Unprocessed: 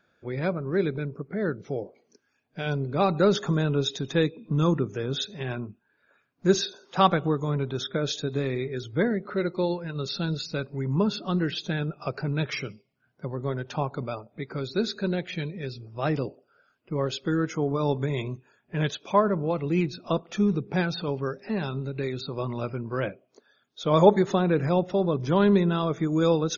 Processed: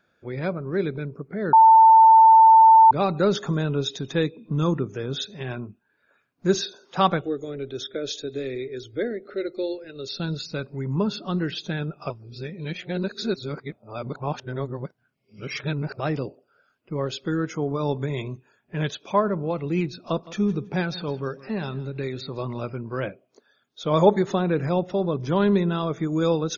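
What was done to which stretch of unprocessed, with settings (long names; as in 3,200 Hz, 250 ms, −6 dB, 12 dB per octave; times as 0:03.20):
0:01.53–0:02.91: beep over 893 Hz −8.5 dBFS
0:07.21–0:10.20: phaser with its sweep stopped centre 410 Hz, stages 4
0:12.10–0:16.00: reverse
0:19.90–0:22.63: repeating echo 163 ms, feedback 22%, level −18.5 dB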